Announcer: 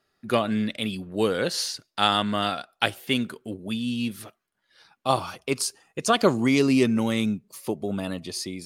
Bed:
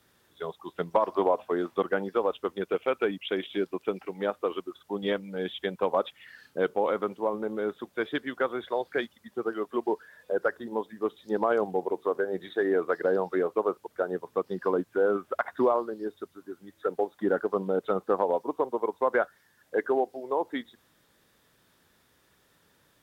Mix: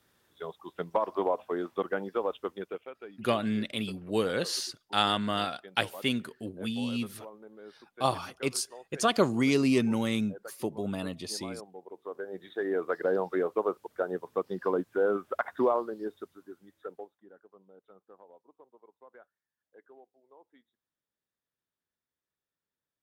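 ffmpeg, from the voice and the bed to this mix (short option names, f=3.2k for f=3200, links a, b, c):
-filter_complex "[0:a]adelay=2950,volume=-4.5dB[a];[1:a]volume=12.5dB,afade=t=out:st=2.47:d=0.44:silence=0.188365,afade=t=in:st=11.85:d=1.28:silence=0.149624,afade=t=out:st=16.04:d=1.17:silence=0.0421697[b];[a][b]amix=inputs=2:normalize=0"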